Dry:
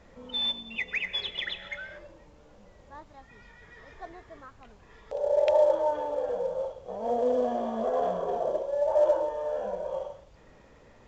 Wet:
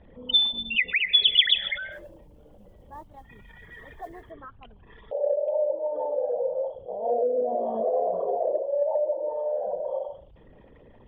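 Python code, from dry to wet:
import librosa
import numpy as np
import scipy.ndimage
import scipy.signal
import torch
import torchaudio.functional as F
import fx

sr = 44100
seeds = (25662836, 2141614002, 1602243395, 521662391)

y = fx.envelope_sharpen(x, sr, power=2.0)
y = fx.env_lowpass_down(y, sr, base_hz=420.0, full_db=-21.5)
y = fx.lowpass_res(y, sr, hz=3200.0, q=8.7)
y = fx.mod_noise(y, sr, seeds[0], snr_db=29, at=(1.91, 4.3), fade=0.02)
y = y * 10.0 ** (3.0 / 20.0)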